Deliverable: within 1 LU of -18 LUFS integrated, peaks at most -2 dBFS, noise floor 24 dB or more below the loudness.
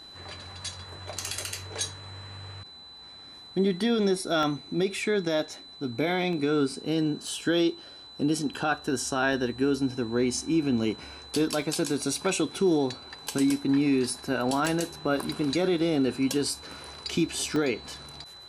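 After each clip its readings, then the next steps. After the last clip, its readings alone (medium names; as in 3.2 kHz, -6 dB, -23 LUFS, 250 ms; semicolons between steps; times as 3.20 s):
dropouts 7; longest dropout 1.3 ms; steady tone 4 kHz; tone level -45 dBFS; loudness -28.0 LUFS; peak level -13.5 dBFS; loudness target -18.0 LUFS
-> interpolate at 4.43/6.33/7.28/9.33/11.62/14.66/17.56 s, 1.3 ms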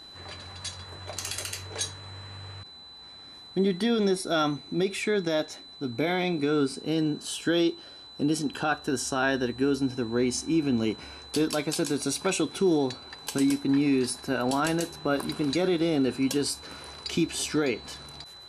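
dropouts 0; steady tone 4 kHz; tone level -45 dBFS
-> band-stop 4 kHz, Q 30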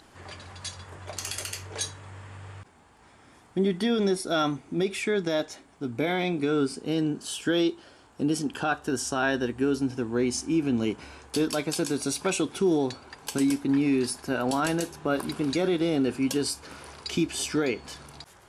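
steady tone not found; loudness -27.5 LUFS; peak level -13.5 dBFS; loudness target -18.0 LUFS
-> trim +9.5 dB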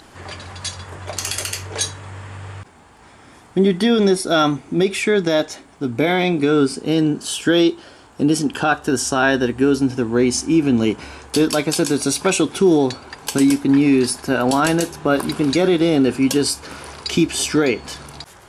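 loudness -18.0 LUFS; peak level -4.0 dBFS; noise floor -46 dBFS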